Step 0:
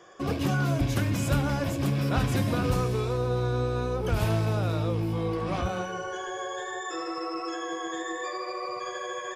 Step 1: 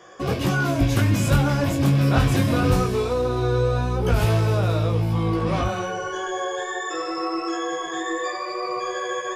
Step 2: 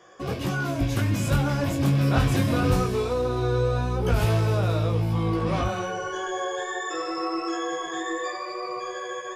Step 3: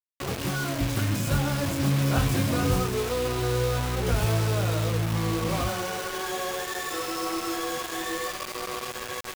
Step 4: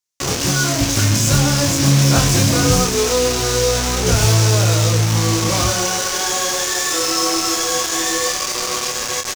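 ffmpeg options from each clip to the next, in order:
-af "flanger=delay=16:depth=6.2:speed=0.22,volume=2.82"
-af "dynaudnorm=f=320:g=9:m=1.5,volume=0.531"
-af "acrusher=bits=4:mix=0:aa=0.000001,volume=0.75"
-filter_complex "[0:a]equalizer=f=6100:w=1.3:g=13.5,asplit=2[s0][s1];[s1]adelay=28,volume=0.562[s2];[s0][s2]amix=inputs=2:normalize=0,volume=2.37"

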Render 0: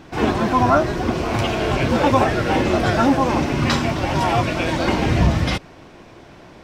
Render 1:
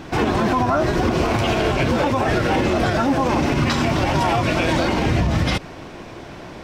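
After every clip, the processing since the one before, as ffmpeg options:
-af "acompressor=threshold=0.141:ratio=6,alimiter=limit=0.141:level=0:latency=1:release=84,volume=2.24"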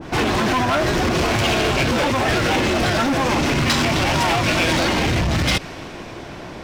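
-af "asoftclip=type=hard:threshold=0.119,adynamicequalizer=threshold=0.0141:dfrequency=1600:dqfactor=0.7:tfrequency=1600:tqfactor=0.7:attack=5:release=100:ratio=0.375:range=3:mode=boostabove:tftype=highshelf,volume=1.26"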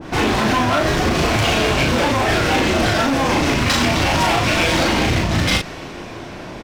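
-filter_complex "[0:a]asplit=2[s0][s1];[s1]adelay=37,volume=0.708[s2];[s0][s2]amix=inputs=2:normalize=0"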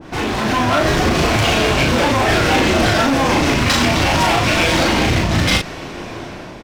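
-af "dynaudnorm=f=160:g=7:m=3.55,volume=0.668"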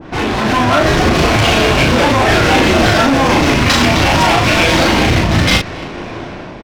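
-af "aecho=1:1:274:0.075,adynamicsmooth=sensitivity=3:basefreq=4300,volume=1.58"

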